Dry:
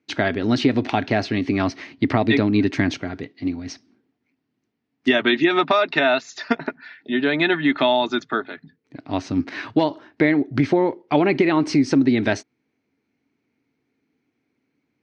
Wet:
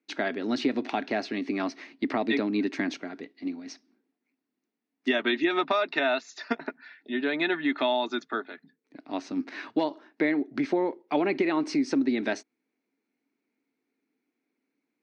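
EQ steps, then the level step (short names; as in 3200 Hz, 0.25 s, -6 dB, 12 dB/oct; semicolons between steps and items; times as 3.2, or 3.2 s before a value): HPF 210 Hz 24 dB/oct; notch 3100 Hz, Q 20; -7.5 dB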